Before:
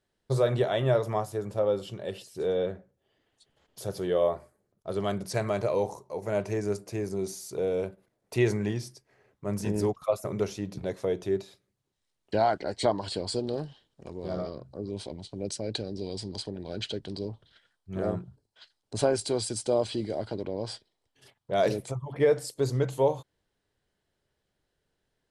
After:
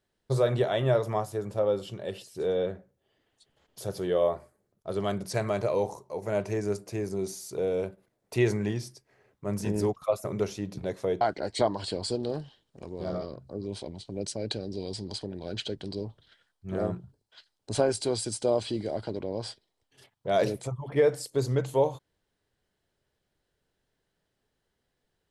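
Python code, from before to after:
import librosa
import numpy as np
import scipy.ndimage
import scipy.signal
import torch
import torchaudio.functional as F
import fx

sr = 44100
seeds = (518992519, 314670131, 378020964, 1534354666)

y = fx.edit(x, sr, fx.cut(start_s=11.21, length_s=1.24), tone=tone)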